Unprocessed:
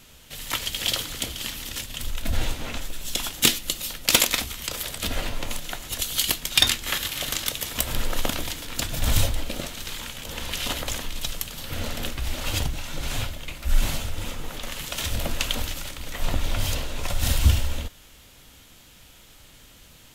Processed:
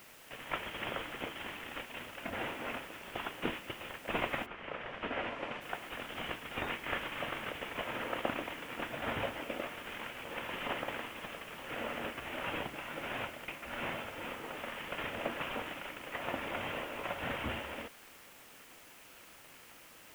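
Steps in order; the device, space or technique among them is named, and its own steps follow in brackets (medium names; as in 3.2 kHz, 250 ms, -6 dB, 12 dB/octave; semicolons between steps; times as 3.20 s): army field radio (band-pass 310–3400 Hz; CVSD coder 16 kbps; white noise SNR 18 dB); 4.45–5.60 s: low-pass 2.2 kHz -> 5.5 kHz 12 dB/octave; trim -2 dB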